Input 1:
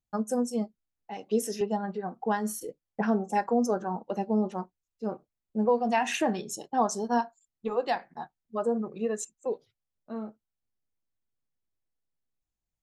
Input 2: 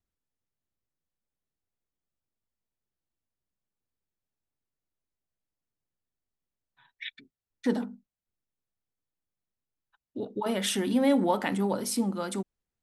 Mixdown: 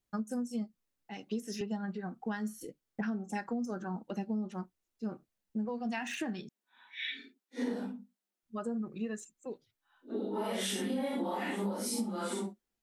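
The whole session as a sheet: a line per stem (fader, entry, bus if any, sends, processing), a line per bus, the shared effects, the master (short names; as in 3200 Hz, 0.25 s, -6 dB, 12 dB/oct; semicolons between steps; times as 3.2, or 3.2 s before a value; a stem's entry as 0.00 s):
0.0 dB, 0.00 s, muted 6.49–8.43, no send, band shelf 660 Hz -9.5 dB; de-esser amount 95%; auto duck -6 dB, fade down 1.00 s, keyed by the second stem
+3.0 dB, 0.00 s, no send, phase scrambler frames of 0.2 s; steep high-pass 190 Hz 96 dB/oct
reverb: off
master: compressor 6:1, threshold -32 dBFS, peak gain reduction 13 dB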